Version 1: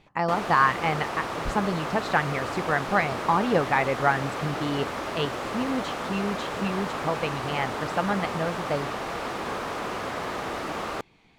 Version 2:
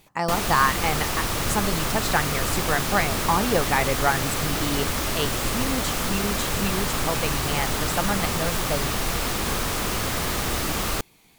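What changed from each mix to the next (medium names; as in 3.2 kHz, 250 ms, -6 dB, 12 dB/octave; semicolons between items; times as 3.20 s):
speech: remove low-pass 3.1 kHz 12 dB/octave; background: remove band-pass filter 730 Hz, Q 0.65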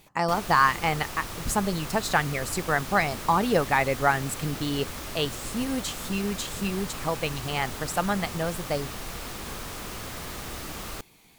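background -11.0 dB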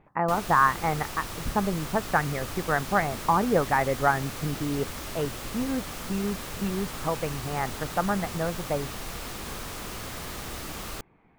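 speech: add low-pass 1.8 kHz 24 dB/octave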